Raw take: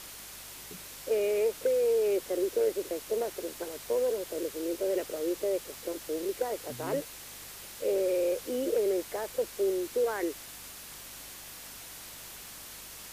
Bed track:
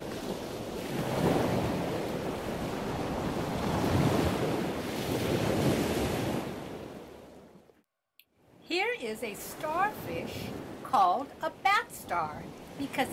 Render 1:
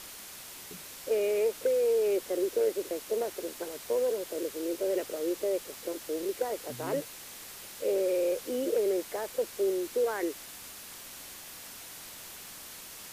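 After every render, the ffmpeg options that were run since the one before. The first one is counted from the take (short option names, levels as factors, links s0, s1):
-af "bandreject=f=50:t=h:w=4,bandreject=f=100:t=h:w=4,bandreject=f=150:t=h:w=4"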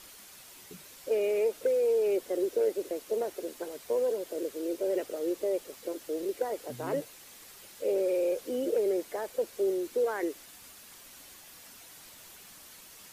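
-af "afftdn=nr=7:nf=-46"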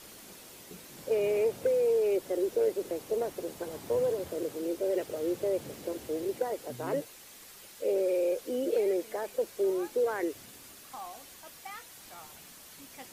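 -filter_complex "[1:a]volume=0.112[s0];[0:a][s0]amix=inputs=2:normalize=0"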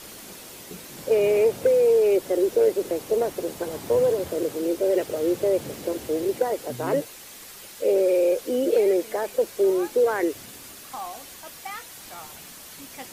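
-af "volume=2.51"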